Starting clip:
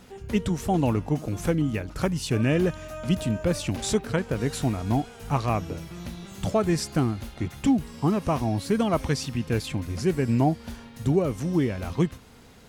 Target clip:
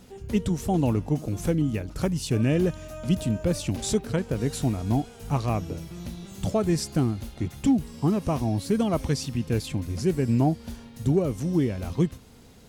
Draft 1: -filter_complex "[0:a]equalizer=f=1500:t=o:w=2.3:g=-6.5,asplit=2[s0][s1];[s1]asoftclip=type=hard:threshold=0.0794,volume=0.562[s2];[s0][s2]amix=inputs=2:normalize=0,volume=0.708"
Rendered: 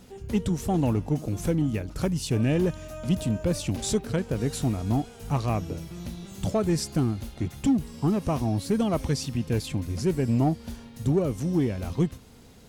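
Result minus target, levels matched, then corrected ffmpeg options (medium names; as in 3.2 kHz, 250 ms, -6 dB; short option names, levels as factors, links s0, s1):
hard clipper: distortion +18 dB
-filter_complex "[0:a]equalizer=f=1500:t=o:w=2.3:g=-6.5,asplit=2[s0][s1];[s1]asoftclip=type=hard:threshold=0.178,volume=0.562[s2];[s0][s2]amix=inputs=2:normalize=0,volume=0.708"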